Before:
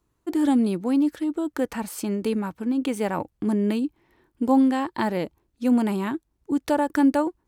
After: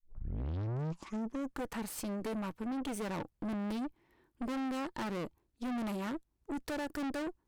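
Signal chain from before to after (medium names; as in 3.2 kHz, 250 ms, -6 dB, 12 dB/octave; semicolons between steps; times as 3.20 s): tape start-up on the opening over 1.66 s; valve stage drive 32 dB, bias 0.75; trim -2.5 dB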